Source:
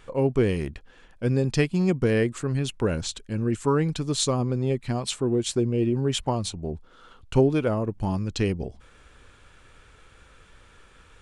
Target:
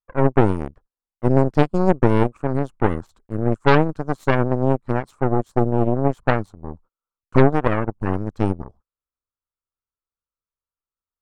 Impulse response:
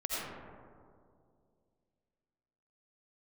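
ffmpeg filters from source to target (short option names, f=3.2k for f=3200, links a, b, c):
-af "agate=range=-36dB:threshold=-42dB:ratio=16:detection=peak,highshelf=f=1.7k:t=q:w=3:g=-13.5,aeval=exprs='0.398*(cos(1*acos(clip(val(0)/0.398,-1,1)))-cos(1*PI/2))+0.178*(cos(4*acos(clip(val(0)/0.398,-1,1)))-cos(4*PI/2))+0.0447*(cos(7*acos(clip(val(0)/0.398,-1,1)))-cos(7*PI/2))':c=same,volume=2dB"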